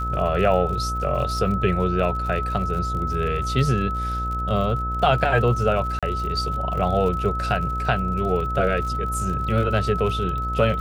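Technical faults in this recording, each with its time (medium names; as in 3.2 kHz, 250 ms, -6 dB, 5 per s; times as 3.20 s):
buzz 60 Hz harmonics 14 -28 dBFS
crackle 60 per s -31 dBFS
whine 1.3 kHz -26 dBFS
5.99–6.03 s: dropout 36 ms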